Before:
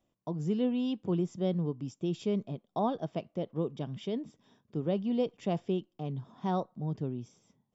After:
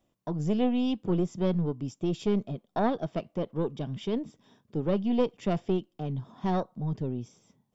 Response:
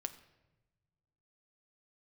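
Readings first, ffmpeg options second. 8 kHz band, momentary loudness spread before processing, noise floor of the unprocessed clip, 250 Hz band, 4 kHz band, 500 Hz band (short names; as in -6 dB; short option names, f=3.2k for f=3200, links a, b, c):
n/a, 8 LU, -80 dBFS, +3.5 dB, +3.5 dB, +3.5 dB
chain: -af "aeval=exprs='0.119*(cos(1*acos(clip(val(0)/0.119,-1,1)))-cos(1*PI/2))+0.0335*(cos(2*acos(clip(val(0)/0.119,-1,1)))-cos(2*PI/2))+0.00237*(cos(6*acos(clip(val(0)/0.119,-1,1)))-cos(6*PI/2))':c=same,volume=4dB"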